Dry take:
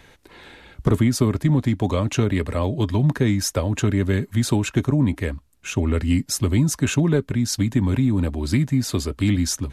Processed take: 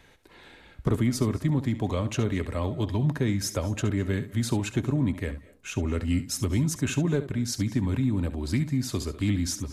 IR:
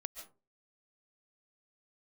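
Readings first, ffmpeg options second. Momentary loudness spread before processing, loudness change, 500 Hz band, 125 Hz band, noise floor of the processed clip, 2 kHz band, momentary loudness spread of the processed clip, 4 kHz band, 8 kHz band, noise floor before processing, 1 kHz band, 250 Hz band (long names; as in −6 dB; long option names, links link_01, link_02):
4 LU, −6.5 dB, −6.5 dB, −6.5 dB, −54 dBFS, −6.0 dB, 4 LU, −6.5 dB, −6.5 dB, −53 dBFS, −6.5 dB, −6.5 dB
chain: -filter_complex "[0:a]asplit=2[link_01][link_02];[1:a]atrim=start_sample=2205,adelay=69[link_03];[link_02][link_03]afir=irnorm=-1:irlink=0,volume=-9.5dB[link_04];[link_01][link_04]amix=inputs=2:normalize=0,volume=-6.5dB"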